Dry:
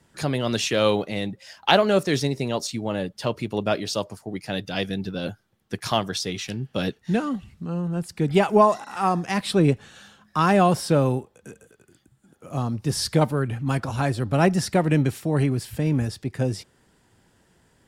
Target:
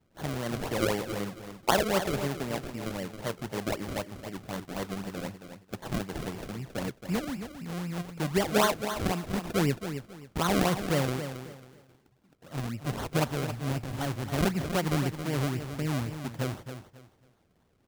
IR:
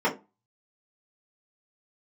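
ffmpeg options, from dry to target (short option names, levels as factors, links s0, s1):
-af "acrusher=samples=34:mix=1:aa=0.000001:lfo=1:lforange=34:lforate=3.9,aecho=1:1:272|544|816:0.335|0.0871|0.0226,volume=0.398"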